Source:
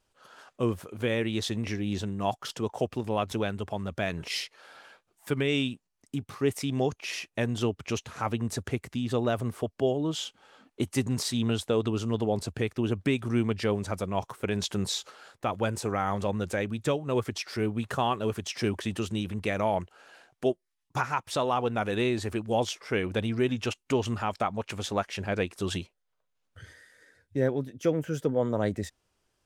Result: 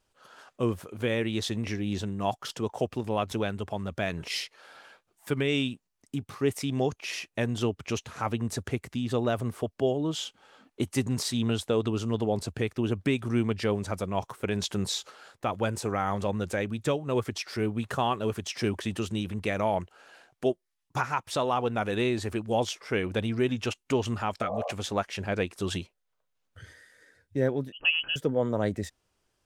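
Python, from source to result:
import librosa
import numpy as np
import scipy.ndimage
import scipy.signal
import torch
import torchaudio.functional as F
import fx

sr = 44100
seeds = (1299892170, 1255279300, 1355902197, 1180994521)

y = fx.spec_repair(x, sr, seeds[0], start_s=24.44, length_s=0.25, low_hz=460.0, high_hz=1200.0, source='before')
y = fx.freq_invert(y, sr, carrier_hz=3100, at=(27.72, 28.16))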